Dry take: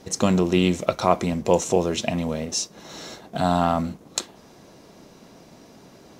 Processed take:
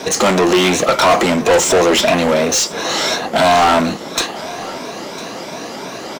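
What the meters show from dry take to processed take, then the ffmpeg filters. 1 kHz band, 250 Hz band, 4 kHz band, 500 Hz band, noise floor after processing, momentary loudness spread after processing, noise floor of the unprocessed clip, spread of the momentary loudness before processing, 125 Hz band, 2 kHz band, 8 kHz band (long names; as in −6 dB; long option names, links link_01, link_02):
+11.0 dB, +6.0 dB, +14.5 dB, +10.0 dB, −29 dBFS, 15 LU, −50 dBFS, 14 LU, +1.0 dB, +16.5 dB, +12.0 dB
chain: -filter_complex "[0:a]afftfilt=real='re*pow(10,7/40*sin(2*PI*(1.6*log(max(b,1)*sr/1024/100)/log(2)-(2.9)*(pts-256)/sr)))':imag='im*pow(10,7/40*sin(2*PI*(1.6*log(max(b,1)*sr/1024/100)/log(2)-(2.9)*(pts-256)/sr)))':win_size=1024:overlap=0.75,asplit=2[link_01][link_02];[link_02]highpass=frequency=720:poles=1,volume=33dB,asoftclip=type=tanh:threshold=-2.5dB[link_03];[link_01][link_03]amix=inputs=2:normalize=0,lowpass=frequency=4300:poles=1,volume=-6dB,acrossover=split=230|1500|3900[link_04][link_05][link_06][link_07];[link_04]asoftclip=type=tanh:threshold=-24.5dB[link_08];[link_08][link_05][link_06][link_07]amix=inputs=4:normalize=0,aecho=1:1:1004:0.119,volume=-1dB"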